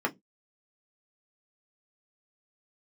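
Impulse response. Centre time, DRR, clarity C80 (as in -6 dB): 7 ms, 0.5 dB, 33.5 dB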